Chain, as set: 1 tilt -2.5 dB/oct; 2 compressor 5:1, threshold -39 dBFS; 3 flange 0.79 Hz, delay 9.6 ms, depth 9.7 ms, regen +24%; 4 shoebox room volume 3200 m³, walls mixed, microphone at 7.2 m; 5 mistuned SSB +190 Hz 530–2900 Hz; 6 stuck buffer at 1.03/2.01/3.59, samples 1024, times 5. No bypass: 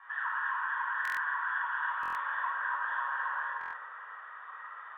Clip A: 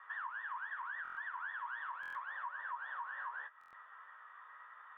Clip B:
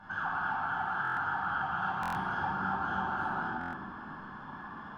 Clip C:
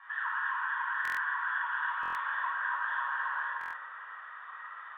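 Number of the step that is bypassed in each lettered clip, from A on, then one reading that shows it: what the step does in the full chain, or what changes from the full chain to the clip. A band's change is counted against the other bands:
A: 4, loudness change -10.0 LU; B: 5, 500 Hz band +10.5 dB; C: 1, 500 Hz band -3.5 dB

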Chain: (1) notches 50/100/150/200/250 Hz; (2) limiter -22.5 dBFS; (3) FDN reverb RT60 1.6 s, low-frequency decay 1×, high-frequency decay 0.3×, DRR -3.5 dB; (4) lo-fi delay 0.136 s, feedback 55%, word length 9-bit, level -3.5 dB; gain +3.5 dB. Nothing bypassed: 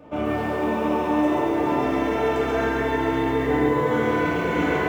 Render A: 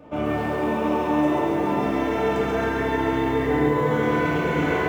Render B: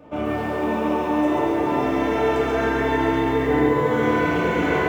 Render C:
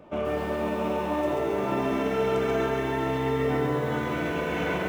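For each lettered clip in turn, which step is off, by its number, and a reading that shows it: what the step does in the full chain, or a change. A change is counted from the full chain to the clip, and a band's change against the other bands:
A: 1, 125 Hz band +2.5 dB; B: 2, momentary loudness spread change +1 LU; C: 3, loudness change -4.5 LU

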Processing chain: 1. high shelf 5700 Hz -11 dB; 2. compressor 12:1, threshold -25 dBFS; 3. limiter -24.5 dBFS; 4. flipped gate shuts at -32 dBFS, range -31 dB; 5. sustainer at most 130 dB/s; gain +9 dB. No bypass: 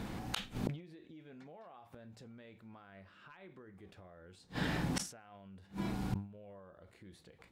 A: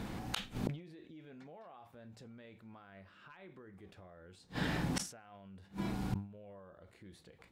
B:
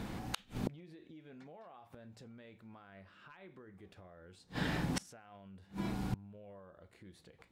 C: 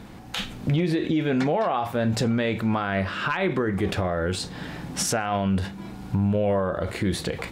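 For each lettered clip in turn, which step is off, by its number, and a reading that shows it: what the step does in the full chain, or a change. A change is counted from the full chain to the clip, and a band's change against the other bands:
2, mean gain reduction 2.5 dB; 5, 8 kHz band -3.0 dB; 4, momentary loudness spread change -11 LU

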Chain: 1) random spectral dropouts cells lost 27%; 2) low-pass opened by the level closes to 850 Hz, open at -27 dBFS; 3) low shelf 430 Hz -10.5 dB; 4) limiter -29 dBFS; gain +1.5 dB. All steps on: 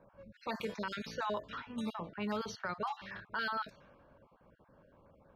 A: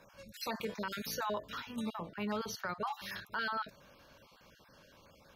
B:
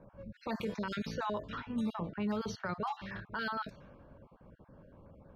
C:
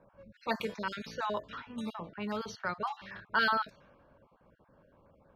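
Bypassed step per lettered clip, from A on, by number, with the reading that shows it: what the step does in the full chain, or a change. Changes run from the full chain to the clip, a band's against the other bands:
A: 2, 8 kHz band +8.0 dB; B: 3, 125 Hz band +7.0 dB; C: 4, crest factor change +7.5 dB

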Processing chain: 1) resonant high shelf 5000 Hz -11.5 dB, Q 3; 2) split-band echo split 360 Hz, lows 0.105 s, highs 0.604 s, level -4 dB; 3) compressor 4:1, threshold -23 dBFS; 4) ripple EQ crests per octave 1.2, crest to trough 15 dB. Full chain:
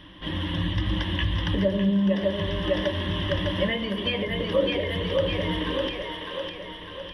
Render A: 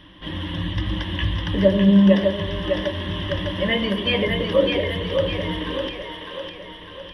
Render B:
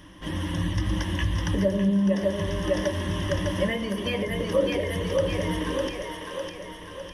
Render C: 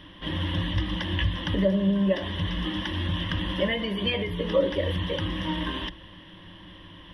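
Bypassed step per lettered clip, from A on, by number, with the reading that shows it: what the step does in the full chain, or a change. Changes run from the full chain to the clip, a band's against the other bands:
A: 3, mean gain reduction 2.0 dB; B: 1, 4 kHz band -5.5 dB; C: 2, momentary loudness spread change +12 LU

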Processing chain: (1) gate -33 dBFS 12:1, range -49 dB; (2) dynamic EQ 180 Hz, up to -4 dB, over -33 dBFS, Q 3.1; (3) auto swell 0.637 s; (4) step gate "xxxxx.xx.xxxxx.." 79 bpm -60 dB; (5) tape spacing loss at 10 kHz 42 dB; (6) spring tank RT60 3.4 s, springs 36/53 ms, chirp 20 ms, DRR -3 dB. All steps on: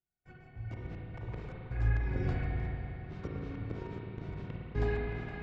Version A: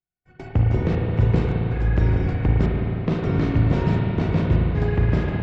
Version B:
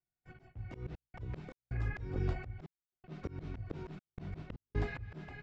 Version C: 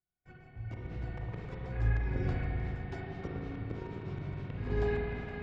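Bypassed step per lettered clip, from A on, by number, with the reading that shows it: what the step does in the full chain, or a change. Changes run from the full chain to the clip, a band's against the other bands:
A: 3, crest factor change -2.5 dB; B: 6, momentary loudness spread change +2 LU; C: 4, momentary loudness spread change -1 LU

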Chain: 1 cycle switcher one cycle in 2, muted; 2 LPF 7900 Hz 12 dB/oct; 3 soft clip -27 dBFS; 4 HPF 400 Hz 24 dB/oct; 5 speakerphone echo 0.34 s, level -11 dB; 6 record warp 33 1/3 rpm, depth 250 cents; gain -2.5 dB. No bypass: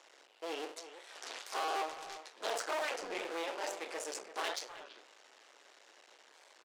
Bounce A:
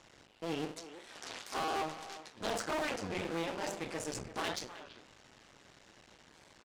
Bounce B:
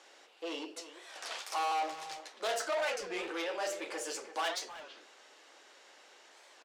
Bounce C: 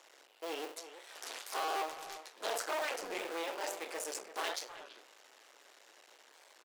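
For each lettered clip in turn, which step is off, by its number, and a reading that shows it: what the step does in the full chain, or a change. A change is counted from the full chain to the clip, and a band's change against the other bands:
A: 4, 250 Hz band +9.0 dB; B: 1, loudness change +3.0 LU; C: 2, 8 kHz band +2.0 dB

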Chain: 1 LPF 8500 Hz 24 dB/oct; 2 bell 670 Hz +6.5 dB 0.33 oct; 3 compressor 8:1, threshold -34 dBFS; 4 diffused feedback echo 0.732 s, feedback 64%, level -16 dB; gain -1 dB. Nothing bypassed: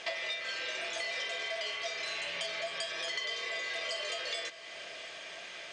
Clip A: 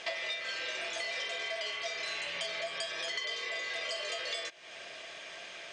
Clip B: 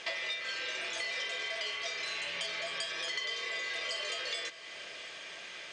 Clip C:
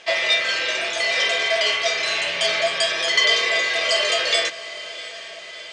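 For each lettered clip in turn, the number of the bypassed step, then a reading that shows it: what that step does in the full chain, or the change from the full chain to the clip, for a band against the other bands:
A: 4, echo-to-direct -13.5 dB to none; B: 2, 500 Hz band -4.0 dB; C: 3, mean gain reduction 12.5 dB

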